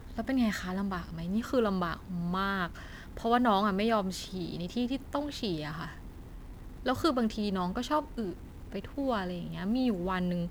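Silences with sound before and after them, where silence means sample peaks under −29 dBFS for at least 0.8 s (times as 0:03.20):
0:05.84–0:06.86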